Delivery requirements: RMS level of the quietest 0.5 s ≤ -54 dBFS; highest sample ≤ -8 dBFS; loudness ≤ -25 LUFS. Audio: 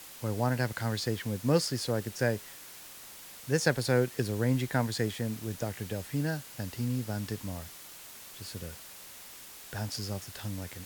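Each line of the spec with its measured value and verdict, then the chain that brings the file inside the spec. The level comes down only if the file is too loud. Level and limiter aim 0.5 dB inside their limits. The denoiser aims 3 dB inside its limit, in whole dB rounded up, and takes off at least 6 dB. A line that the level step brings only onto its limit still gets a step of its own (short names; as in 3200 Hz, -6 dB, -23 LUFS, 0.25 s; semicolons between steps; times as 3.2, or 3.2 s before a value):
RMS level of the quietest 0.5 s -48 dBFS: fail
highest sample -10.5 dBFS: OK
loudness -32.5 LUFS: OK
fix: denoiser 9 dB, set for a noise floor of -48 dBFS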